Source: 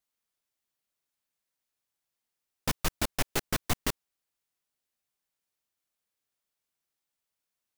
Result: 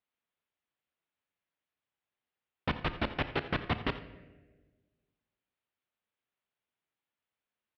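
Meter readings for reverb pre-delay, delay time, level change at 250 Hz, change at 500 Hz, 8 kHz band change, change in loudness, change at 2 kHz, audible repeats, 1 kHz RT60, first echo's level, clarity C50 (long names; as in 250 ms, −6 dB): 27 ms, 85 ms, +0.5 dB, +0.5 dB, below −35 dB, −3.0 dB, +0.5 dB, 1, 1.1 s, −15.5 dB, 11.5 dB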